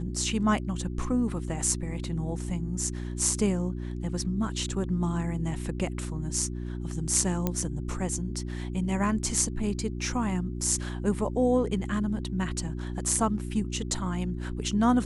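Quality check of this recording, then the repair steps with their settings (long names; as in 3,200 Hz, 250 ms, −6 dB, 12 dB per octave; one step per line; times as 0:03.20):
mains hum 60 Hz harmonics 6 −34 dBFS
0:07.47: click −13 dBFS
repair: click removal
hum removal 60 Hz, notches 6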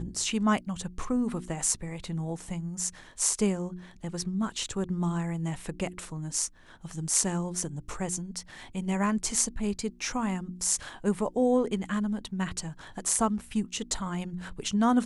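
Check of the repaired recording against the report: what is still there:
none of them is left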